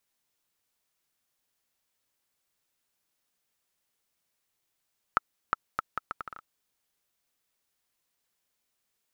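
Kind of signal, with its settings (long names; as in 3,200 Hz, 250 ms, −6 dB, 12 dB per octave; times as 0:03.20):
bouncing ball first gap 0.36 s, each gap 0.72, 1,310 Hz, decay 19 ms −8 dBFS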